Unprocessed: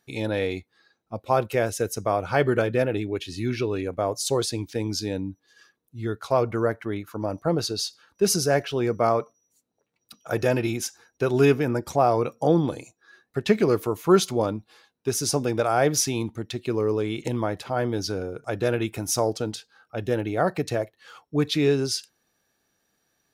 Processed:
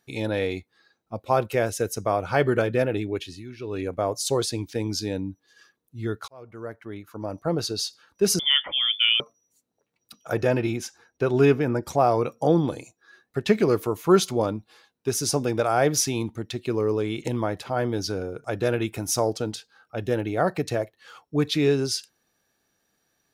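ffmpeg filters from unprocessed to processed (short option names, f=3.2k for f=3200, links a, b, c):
-filter_complex "[0:a]asettb=1/sr,asplit=3[a][b][c];[a]atrim=end=8.394[d];[b]atrim=start=8.39:end=9.2,asetpts=PTS-STARTPTS,afade=t=in:d=0.004:c=qsin,afade=t=out:st=0.806:d=0.004:c=qsin,lowpass=f=3.1k:t=q:w=0.5098,lowpass=f=3.1k:t=q:w=0.6013,lowpass=f=3.1k:t=q:w=0.9,lowpass=f=3.1k:t=q:w=2.563,afreqshift=-3600[e];[c]atrim=start=9.196[f];[d][e]acrossfade=d=0.004:c1=hsin:c2=qsin[g];[g][f]acrossfade=d=0.004:c1=qsin:c2=hsin,asettb=1/sr,asplit=3[h][i][j];[h]atrim=end=10.334[k];[i]atrim=start=10.33:end=11.83,asetpts=PTS-STARTPTS,afade=t=in:d=0.004:c=qsin,afade=t=out:st=1.496:d=0.004:c=qsin,aemphasis=mode=reproduction:type=cd[l];[j]atrim=start=11.826[m];[k][l]acrossfade=d=0.004:c1=hsin:c2=qsin[n];[n][m]acrossfade=d=0.004:c1=qsin:c2=hsin,asplit=4[o][p][q][r];[o]atrim=end=3.44,asetpts=PTS-STARTPTS,afade=t=out:st=3.2:d=0.24:silence=0.211349[s];[p]atrim=start=3.44:end=3.59,asetpts=PTS-STARTPTS,volume=-13.5dB[t];[q]atrim=start=3.59:end=6.28,asetpts=PTS-STARTPTS,afade=t=in:d=0.24:silence=0.211349,afade=t=out:st=2.686:d=0.004:c=hsin[u];[r]atrim=start=6.28,asetpts=PTS-STARTPTS,afade=t=in:d=1.51[v];[s][t][u][v]concat=n=4:v=0:a=1"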